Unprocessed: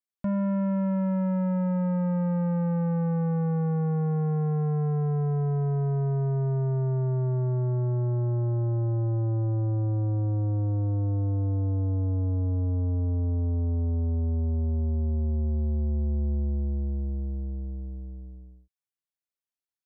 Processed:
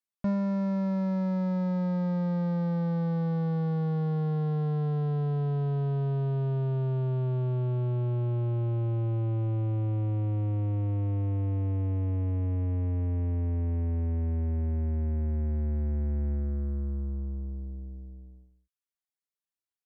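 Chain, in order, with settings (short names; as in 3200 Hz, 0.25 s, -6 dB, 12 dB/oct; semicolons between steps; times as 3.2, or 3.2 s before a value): added harmonics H 2 -22 dB, 4 -26 dB, 7 -31 dB, 8 -38 dB, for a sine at -24.5 dBFS; reverb removal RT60 0.66 s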